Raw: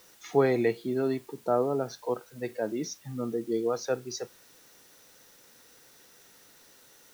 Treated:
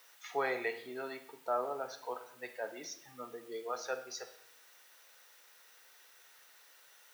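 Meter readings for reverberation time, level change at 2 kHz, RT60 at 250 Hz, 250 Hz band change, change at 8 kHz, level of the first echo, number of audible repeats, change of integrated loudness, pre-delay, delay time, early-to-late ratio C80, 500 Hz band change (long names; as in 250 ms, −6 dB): 0.70 s, −1.0 dB, 1.1 s, −19.0 dB, −6.0 dB, no echo audible, no echo audible, −10.0 dB, 5 ms, no echo audible, 15.0 dB, −11.5 dB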